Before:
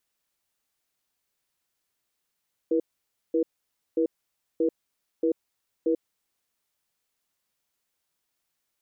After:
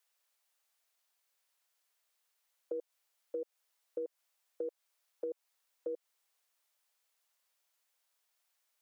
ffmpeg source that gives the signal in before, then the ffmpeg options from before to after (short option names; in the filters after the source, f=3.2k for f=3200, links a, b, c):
-f lavfi -i "aevalsrc='0.0708*(sin(2*PI*329*t)+sin(2*PI*481*t))*clip(min(mod(t,0.63),0.09-mod(t,0.63))/0.005,0,1)':d=3.56:s=44100"
-af "highpass=f=510:w=0.5412,highpass=f=510:w=1.3066,acompressor=threshold=-36dB:ratio=6"